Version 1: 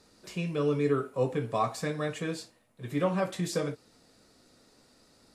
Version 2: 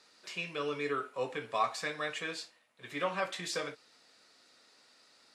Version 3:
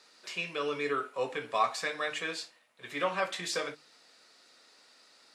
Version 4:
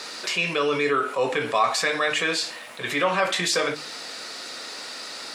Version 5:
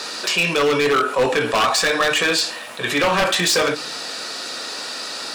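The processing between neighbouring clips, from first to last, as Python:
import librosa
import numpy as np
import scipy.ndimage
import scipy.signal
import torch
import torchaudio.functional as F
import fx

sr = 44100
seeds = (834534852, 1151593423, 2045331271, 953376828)

y1 = fx.bandpass_q(x, sr, hz=2600.0, q=0.66)
y1 = y1 * librosa.db_to_amplitude(4.0)
y2 = fx.low_shelf(y1, sr, hz=110.0, db=-10.0)
y2 = fx.hum_notches(y2, sr, base_hz=50, count=6)
y2 = y2 * librosa.db_to_amplitude(3.0)
y3 = fx.env_flatten(y2, sr, amount_pct=50)
y3 = y3 * librosa.db_to_amplitude(5.5)
y4 = fx.notch(y3, sr, hz=2100.0, q=8.3)
y4 = 10.0 ** (-18.0 / 20.0) * (np.abs((y4 / 10.0 ** (-18.0 / 20.0) + 3.0) % 4.0 - 2.0) - 1.0)
y4 = fx.hum_notches(y4, sr, base_hz=50, count=3)
y4 = y4 * librosa.db_to_amplitude(7.0)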